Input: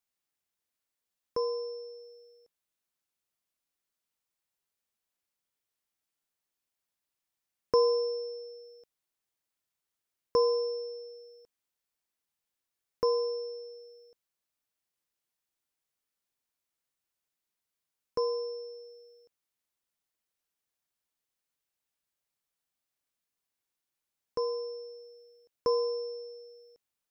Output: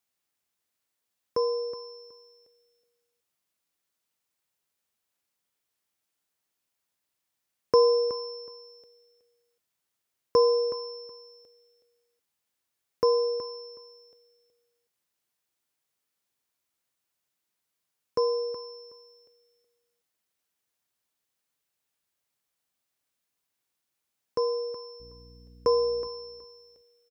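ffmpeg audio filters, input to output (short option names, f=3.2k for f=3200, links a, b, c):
-filter_complex "[0:a]highpass=55,asettb=1/sr,asplit=3[a][b][c];[a]atrim=end=25.004[d];[b]atrim=start=25:end=26.08,asetpts=PTS-STARTPTS,afade=t=in:d=0.004:c=qsin,afade=t=out:st=1.076:d=0.004:c=qsin,aeval=exprs='val(0)+0.00178*(sin(2*PI*60*n/s)+sin(2*PI*2*60*n/s)/2+sin(2*PI*3*60*n/s)/3+sin(2*PI*4*60*n/s)/4+sin(2*PI*5*60*n/s)/5)':c=same[e];[c]atrim=start=26.076[f];[d][e]acrossfade=d=0.004:c1=hsin:c2=qsin[g];[g][f]acrossfade=d=0.004:c1=qsin:c2=hsin,aecho=1:1:371|742:0.224|0.0381,volume=4.5dB"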